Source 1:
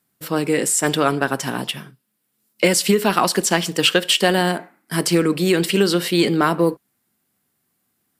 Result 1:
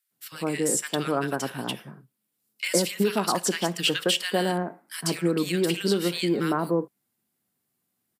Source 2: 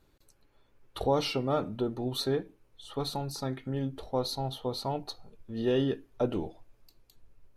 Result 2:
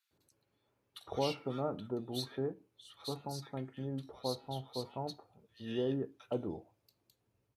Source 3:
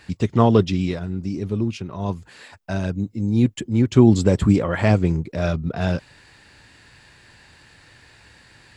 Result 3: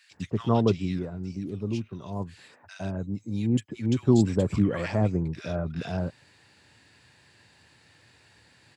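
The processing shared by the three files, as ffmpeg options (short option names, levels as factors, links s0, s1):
-filter_complex "[0:a]highpass=f=80:w=0.5412,highpass=f=80:w=1.3066,acrossover=split=1500[s0][s1];[s0]adelay=110[s2];[s2][s1]amix=inputs=2:normalize=0,volume=0.447"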